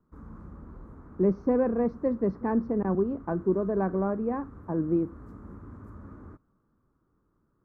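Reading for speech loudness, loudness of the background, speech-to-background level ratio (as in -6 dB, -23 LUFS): -28.0 LUFS, -48.0 LUFS, 20.0 dB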